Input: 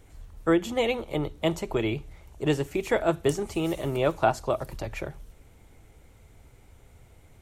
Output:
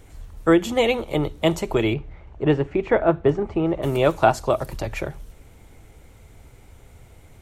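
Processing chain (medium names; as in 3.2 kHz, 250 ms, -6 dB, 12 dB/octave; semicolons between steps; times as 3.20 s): 1.93–3.82 s: low-pass 2.5 kHz -> 1.4 kHz 12 dB/octave; trim +6 dB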